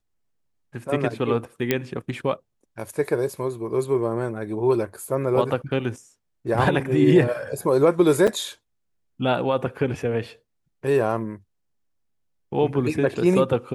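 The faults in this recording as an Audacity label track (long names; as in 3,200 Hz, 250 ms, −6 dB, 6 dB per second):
1.710000	1.710000	click −6 dBFS
8.270000	8.280000	drop-out 6.2 ms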